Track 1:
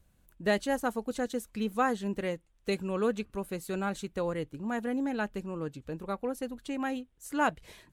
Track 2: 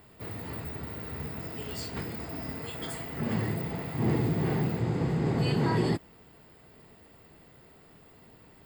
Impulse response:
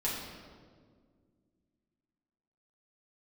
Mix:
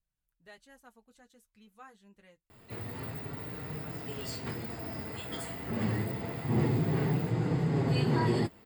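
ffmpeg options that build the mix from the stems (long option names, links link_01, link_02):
-filter_complex "[0:a]equalizer=frequency=340:width=0.62:gain=-9.5,volume=-17.5dB[link_01];[1:a]adelay=2500,volume=2dB[link_02];[link_01][link_02]amix=inputs=2:normalize=0,flanger=delay=6.3:depth=4.2:regen=-31:speed=0.27:shape=triangular"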